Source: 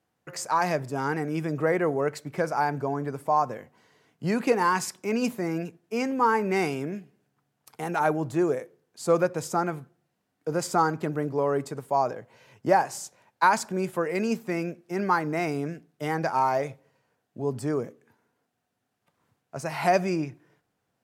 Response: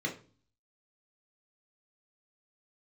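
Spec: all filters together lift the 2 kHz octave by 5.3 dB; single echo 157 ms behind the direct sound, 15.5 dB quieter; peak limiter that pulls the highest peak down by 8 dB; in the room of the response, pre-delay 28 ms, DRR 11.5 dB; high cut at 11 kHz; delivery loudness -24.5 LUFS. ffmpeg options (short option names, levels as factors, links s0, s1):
-filter_complex "[0:a]lowpass=11000,equalizer=f=2000:t=o:g=7,alimiter=limit=0.188:level=0:latency=1,aecho=1:1:157:0.168,asplit=2[s0][s1];[1:a]atrim=start_sample=2205,adelay=28[s2];[s1][s2]afir=irnorm=-1:irlink=0,volume=0.15[s3];[s0][s3]amix=inputs=2:normalize=0,volume=1.41"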